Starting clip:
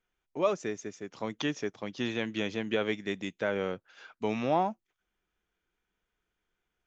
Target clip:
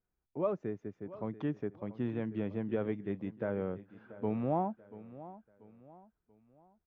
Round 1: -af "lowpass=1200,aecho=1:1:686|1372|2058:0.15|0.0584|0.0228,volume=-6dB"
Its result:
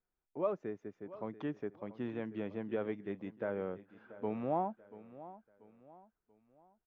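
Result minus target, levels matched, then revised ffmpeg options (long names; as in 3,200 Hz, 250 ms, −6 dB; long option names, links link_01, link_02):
125 Hz band −5.0 dB
-af "lowpass=1200,equalizer=frequency=87:width=0.44:gain=10,aecho=1:1:686|1372|2058:0.15|0.0584|0.0228,volume=-6dB"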